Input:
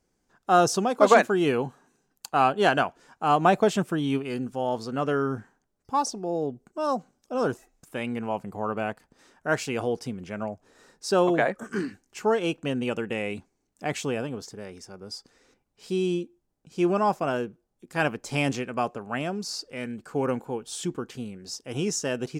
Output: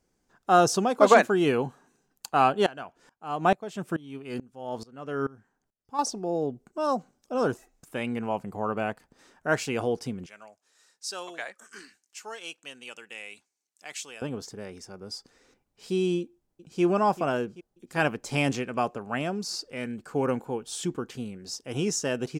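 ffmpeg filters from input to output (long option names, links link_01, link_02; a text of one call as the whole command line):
ffmpeg -i in.wav -filter_complex "[0:a]asettb=1/sr,asplit=3[link_01][link_02][link_03];[link_01]atrim=end=2.664[link_04];[link_02]atrim=start=2.66:end=5.99,asetpts=PTS-STARTPTS,afade=type=in:duration=0.004:curve=qsin,afade=type=out:start_time=3.326:duration=0.004:curve=qsin,aeval=exprs='val(0)*pow(10,-23*if(lt(mod(-2.3*n/s,1),2*abs(-2.3)/1000),1-mod(-2.3*n/s,1)/(2*abs(-2.3)/1000),(mod(-2.3*n/s,1)-2*abs(-2.3)/1000)/(1-2*abs(-2.3)/1000))/20)':channel_layout=same[link_05];[link_03]atrim=start=5.986[link_06];[link_04][link_05]acrossfade=duration=0.004:curve1=hsin:curve2=qsin[link_07];[link_07][link_06]acrossfade=duration=0.004:curve1=qsin:curve2=hsin,asettb=1/sr,asplit=3[link_08][link_09][link_10];[link_08]atrim=end=10.264[link_11];[link_09]atrim=start=10.26:end=14.22,asetpts=PTS-STARTPTS,afade=type=in:duration=0.004:curve=qsin,afade=type=out:start_time=3.956:duration=0.004:curve=qsin,bandpass=frequency=7600:width_type=q:width=0.53[link_12];[link_10]atrim=start=14.216[link_13];[link_11][link_12]acrossfade=duration=0.004:curve1=hsin:curve2=qsin[link_14];[link_14][link_13]acrossfade=duration=0.004:curve1=qsin:curve2=hsin,asplit=2[link_15][link_16];[link_16]afade=type=in:start_time=16.2:duration=0.01,afade=type=out:start_time=16.82:duration=0.01,aecho=0:1:390|780|1170|1560|1950|2340|2730:0.177828|0.115588|0.0751323|0.048836|0.0317434|0.0206332|0.0134116[link_17];[link_15][link_17]amix=inputs=2:normalize=0" out.wav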